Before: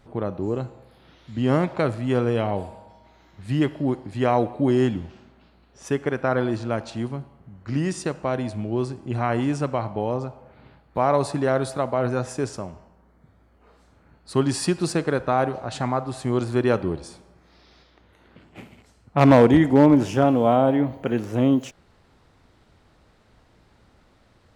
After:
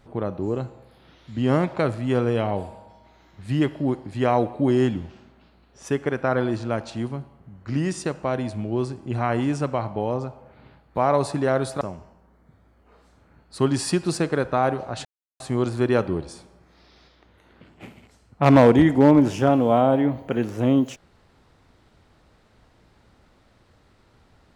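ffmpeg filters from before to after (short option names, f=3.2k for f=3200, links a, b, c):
-filter_complex "[0:a]asplit=4[a][b][c][d];[a]atrim=end=11.812[e];[b]atrim=start=12.558:end=15.8,asetpts=PTS-STARTPTS,afade=t=out:st=3.238:d=0.004:c=hsin[f];[c]atrim=start=15.8:end=16.15,asetpts=PTS-STARTPTS,volume=0[g];[d]atrim=start=16.15,asetpts=PTS-STARTPTS,afade=t=in:d=0.004:c=hsin[h];[f][g][h]concat=n=3:v=0:a=1[i];[e][i]acrossfade=d=0.004:c1=hsin:c2=hsin"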